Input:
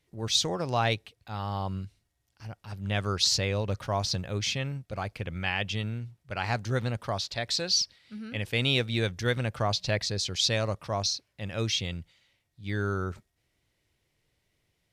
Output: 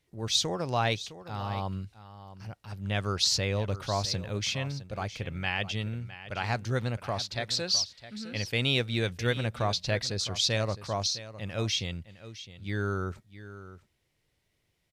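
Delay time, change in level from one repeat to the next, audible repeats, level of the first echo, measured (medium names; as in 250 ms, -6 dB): 660 ms, no regular repeats, 1, -14.5 dB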